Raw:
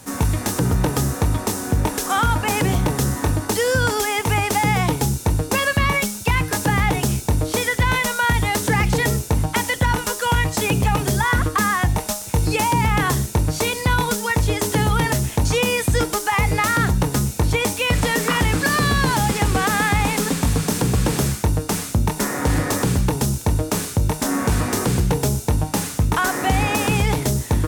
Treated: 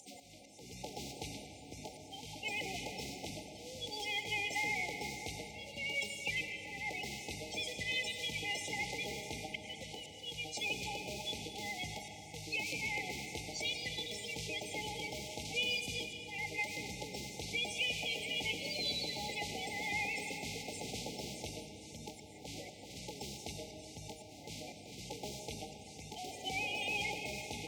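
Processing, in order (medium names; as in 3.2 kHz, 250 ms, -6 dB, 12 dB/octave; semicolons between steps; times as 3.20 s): coarse spectral quantiser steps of 30 dB; high-pass 59 Hz; pre-emphasis filter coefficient 0.97; upward compressor, threshold -36 dBFS; slow attack 451 ms; brick-wall FIR band-stop 870–2000 Hz; distance through air 170 m; on a send: reverberation RT60 3.4 s, pre-delay 65 ms, DRR 4.5 dB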